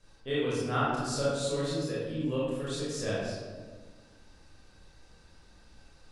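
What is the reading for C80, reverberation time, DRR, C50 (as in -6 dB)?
1.0 dB, 1.5 s, -8.5 dB, -2.0 dB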